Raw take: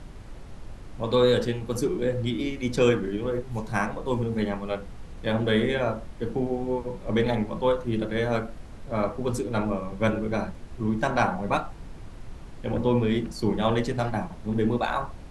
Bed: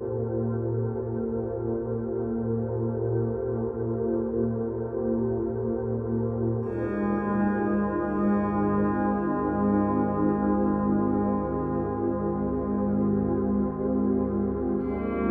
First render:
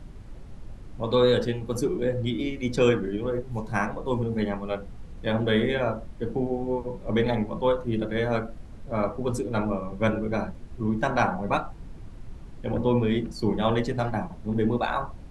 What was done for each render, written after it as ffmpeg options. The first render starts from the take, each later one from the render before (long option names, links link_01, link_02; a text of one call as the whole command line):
ffmpeg -i in.wav -af "afftdn=noise_reduction=6:noise_floor=-43" out.wav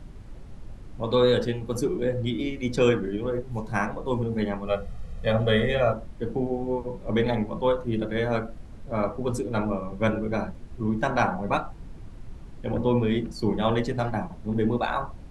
ffmpeg -i in.wav -filter_complex "[0:a]asettb=1/sr,asplit=3[link_01][link_02][link_03];[link_01]atrim=end=4.674[link_04];[link_02]atrim=start=4.67:end=5.93,asetpts=PTS-STARTPTS,afade=type=in:duration=0.004:curve=qsin,afade=type=out:start_time=1.256:duration=0.004:curve=qsin,aecho=1:1:1.6:0.87,atrim=end_sample=55566[link_05];[link_03]atrim=start=5.926[link_06];[link_04][link_05]acrossfade=duration=0.004:curve1=hsin:curve2=qsin[link_07];[link_07][link_06]acrossfade=duration=0.004:curve1=qsin:curve2=hsin" out.wav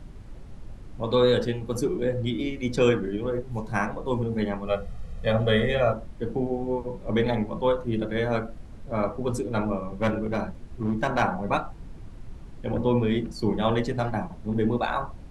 ffmpeg -i in.wav -filter_complex "[0:a]asplit=3[link_01][link_02][link_03];[link_01]afade=type=out:start_time=9.91:duration=0.02[link_04];[link_02]aeval=exprs='clip(val(0),-1,0.0944)':channel_layout=same,afade=type=in:start_time=9.91:duration=0.02,afade=type=out:start_time=11.21:duration=0.02[link_05];[link_03]afade=type=in:start_time=11.21:duration=0.02[link_06];[link_04][link_05][link_06]amix=inputs=3:normalize=0" out.wav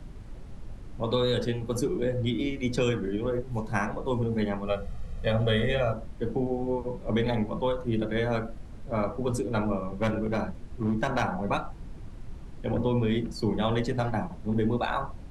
ffmpeg -i in.wav -filter_complex "[0:a]acrossover=split=160|3000[link_01][link_02][link_03];[link_02]acompressor=threshold=-24dB:ratio=6[link_04];[link_01][link_04][link_03]amix=inputs=3:normalize=0" out.wav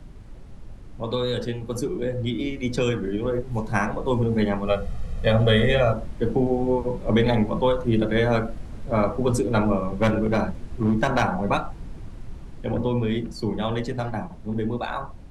ffmpeg -i in.wav -af "dynaudnorm=framelen=220:gausssize=31:maxgain=7dB" out.wav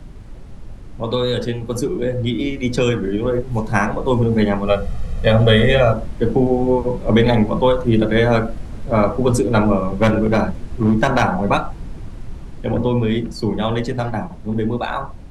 ffmpeg -i in.wav -af "volume=6dB,alimiter=limit=-2dB:level=0:latency=1" out.wav